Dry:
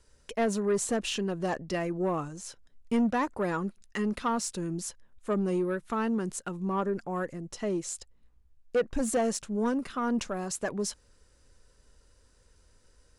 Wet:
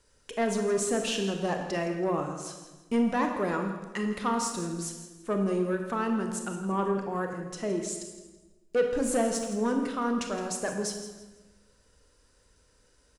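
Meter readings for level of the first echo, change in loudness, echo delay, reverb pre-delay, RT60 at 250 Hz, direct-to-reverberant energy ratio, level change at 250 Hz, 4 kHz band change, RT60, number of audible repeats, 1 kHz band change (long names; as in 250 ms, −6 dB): −13.5 dB, +1.0 dB, 165 ms, 25 ms, 1.4 s, 3.5 dB, +0.5 dB, +1.5 dB, 1.2 s, 2, +1.5 dB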